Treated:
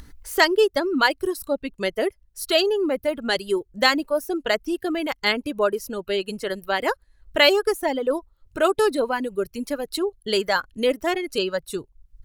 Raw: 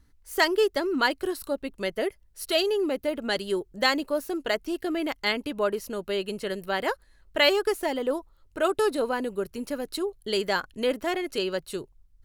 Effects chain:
reverb reduction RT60 1.5 s
upward compression, threshold −37 dBFS
level +5 dB

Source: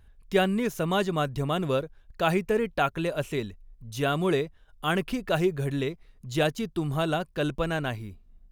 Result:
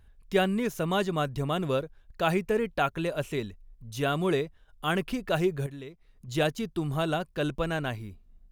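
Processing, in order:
0:05.66–0:06.28: downward compressor 2.5 to 1, threshold −43 dBFS, peak gain reduction 12 dB
level −1.5 dB

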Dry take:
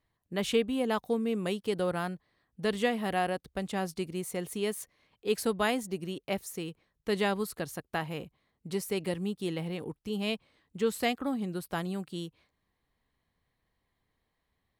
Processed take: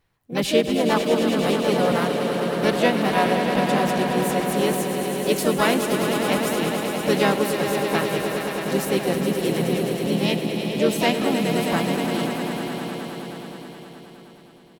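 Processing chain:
echo that builds up and dies away 105 ms, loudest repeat 5, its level −9 dB
pitch-shifted copies added −4 semitones −8 dB, +5 semitones −5 dB
level +6.5 dB

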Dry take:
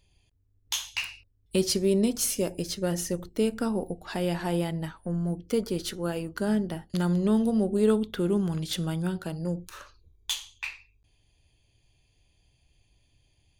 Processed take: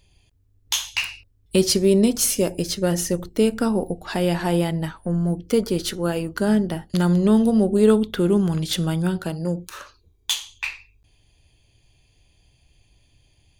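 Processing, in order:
0:09.31–0:10.49: low-shelf EQ 73 Hz −11.5 dB
level +7 dB

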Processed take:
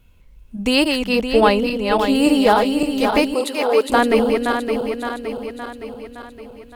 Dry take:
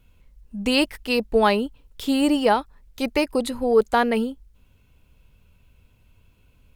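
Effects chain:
feedback delay that plays each chunk backwards 283 ms, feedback 73%, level −4.5 dB
0:00.99–0:02.15: high-shelf EQ 4,200 Hz −5.5 dB
0:03.34–0:03.90: high-pass filter 420 Hz 12 dB per octave
level +3.5 dB

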